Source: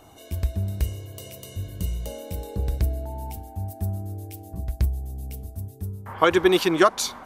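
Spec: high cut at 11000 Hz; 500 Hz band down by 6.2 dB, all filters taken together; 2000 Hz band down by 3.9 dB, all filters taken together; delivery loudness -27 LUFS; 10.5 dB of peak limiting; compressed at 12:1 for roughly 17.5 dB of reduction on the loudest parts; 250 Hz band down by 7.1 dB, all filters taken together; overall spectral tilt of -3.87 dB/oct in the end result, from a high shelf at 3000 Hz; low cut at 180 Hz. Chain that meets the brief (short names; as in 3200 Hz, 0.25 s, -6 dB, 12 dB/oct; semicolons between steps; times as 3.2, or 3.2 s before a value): HPF 180 Hz; LPF 11000 Hz; bell 250 Hz -8 dB; bell 500 Hz -5 dB; bell 2000 Hz -6.5 dB; high shelf 3000 Hz +5 dB; compressor 12:1, threshold -33 dBFS; gain +15.5 dB; limiter -13.5 dBFS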